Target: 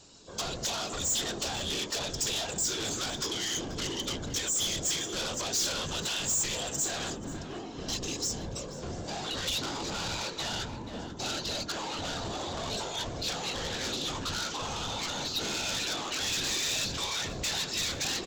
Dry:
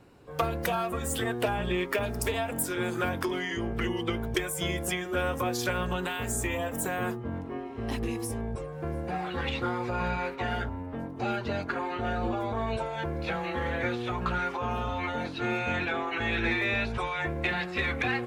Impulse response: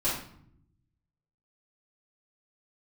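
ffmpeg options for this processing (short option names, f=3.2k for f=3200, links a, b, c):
-filter_complex "[0:a]afftfilt=real='hypot(re,im)*cos(2*PI*random(0))':imag='hypot(re,im)*sin(2*PI*random(1))':win_size=512:overlap=0.75,aemphasis=mode=production:type=50kf,bandreject=f=60:t=h:w=6,bandreject=f=120:t=h:w=6,bandreject=f=180:t=h:w=6,bandreject=f=240:t=h:w=6,bandreject=f=300:t=h:w=6,bandreject=f=360:t=h:w=6,bandreject=f=420:t=h:w=6,bandreject=f=480:t=h:w=6,aresample=16000,asoftclip=type=hard:threshold=-36dB,aresample=44100,aexciter=amount=8.3:drive=2.8:freq=3.2k,asoftclip=type=tanh:threshold=-29dB,asplit=2[a][b];[b]adelay=484,volume=-10dB,highshelf=f=4k:g=-10.9[c];[a][c]amix=inputs=2:normalize=0,volume=3dB"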